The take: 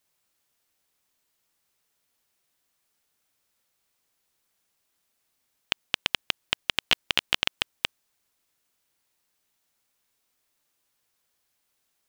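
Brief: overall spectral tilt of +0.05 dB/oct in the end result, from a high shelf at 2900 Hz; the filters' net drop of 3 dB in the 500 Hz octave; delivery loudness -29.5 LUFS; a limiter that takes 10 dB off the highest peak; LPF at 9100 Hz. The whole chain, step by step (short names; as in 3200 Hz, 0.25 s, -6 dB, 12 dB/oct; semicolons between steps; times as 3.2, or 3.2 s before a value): LPF 9100 Hz; bell 500 Hz -4 dB; high shelf 2900 Hz +4.5 dB; gain +6 dB; limiter -3.5 dBFS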